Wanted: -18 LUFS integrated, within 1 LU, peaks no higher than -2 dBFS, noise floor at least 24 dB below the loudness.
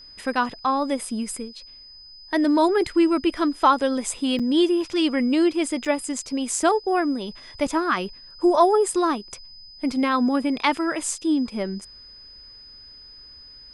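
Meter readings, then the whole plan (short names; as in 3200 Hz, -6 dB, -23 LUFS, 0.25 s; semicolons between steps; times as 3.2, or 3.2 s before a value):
dropouts 2; longest dropout 5.5 ms; steady tone 5000 Hz; tone level -43 dBFS; loudness -22.5 LUFS; peak -5.0 dBFS; loudness target -18.0 LUFS
-> interpolate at 4.39/5.85, 5.5 ms; notch 5000 Hz, Q 30; gain +4.5 dB; limiter -2 dBFS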